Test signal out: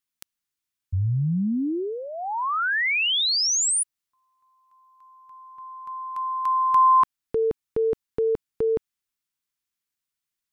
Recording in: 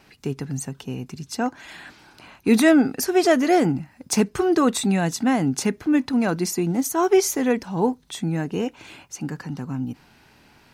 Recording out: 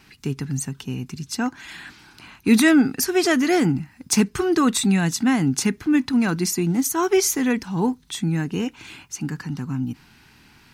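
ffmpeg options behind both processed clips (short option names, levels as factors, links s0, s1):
-af "equalizer=f=580:t=o:w=1:g=-12.5,volume=1.5"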